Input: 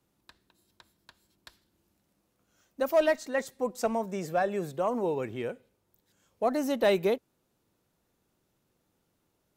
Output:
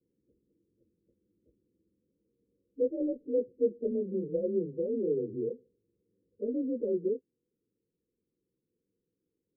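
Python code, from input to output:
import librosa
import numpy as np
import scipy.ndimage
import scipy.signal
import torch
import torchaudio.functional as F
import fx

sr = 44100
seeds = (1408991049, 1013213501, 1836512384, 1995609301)

y = fx.partial_stretch(x, sr, pct=91)
y = scipy.signal.sosfilt(scipy.signal.butter(16, 510.0, 'lowpass', fs=sr, output='sos'), y)
y = fx.rider(y, sr, range_db=10, speed_s=0.5)
y = fx.low_shelf(y, sr, hz=250.0, db=-12.0)
y = y * 10.0 ** (6.5 / 20.0)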